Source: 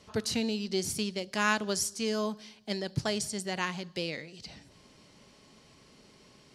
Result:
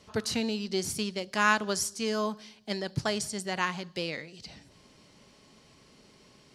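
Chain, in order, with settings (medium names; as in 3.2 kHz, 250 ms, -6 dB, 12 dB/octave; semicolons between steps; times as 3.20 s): dynamic bell 1.2 kHz, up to +5 dB, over -46 dBFS, Q 1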